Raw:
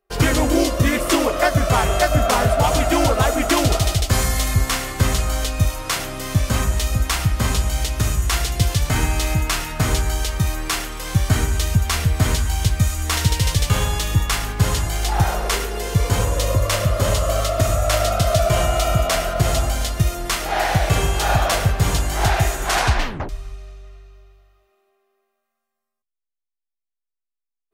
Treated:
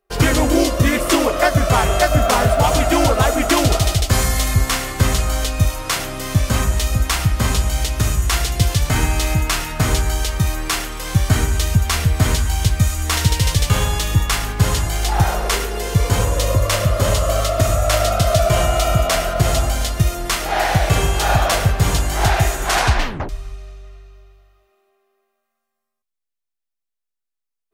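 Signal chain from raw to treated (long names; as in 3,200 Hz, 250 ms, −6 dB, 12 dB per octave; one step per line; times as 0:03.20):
0:02.10–0:02.75: centre clipping without the shift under −35.5 dBFS
level +2 dB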